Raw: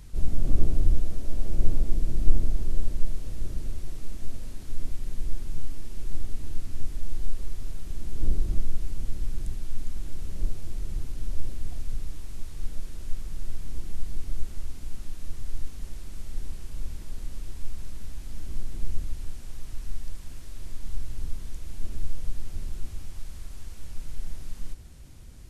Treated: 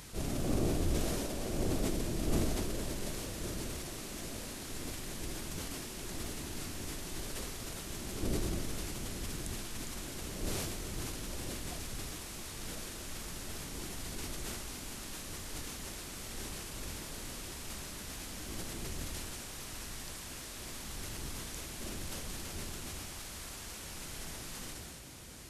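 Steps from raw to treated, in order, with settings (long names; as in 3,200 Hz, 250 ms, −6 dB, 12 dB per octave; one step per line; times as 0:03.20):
high-pass filter 440 Hz 6 dB per octave
level that may fall only so fast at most 22 dB per second
level +8.5 dB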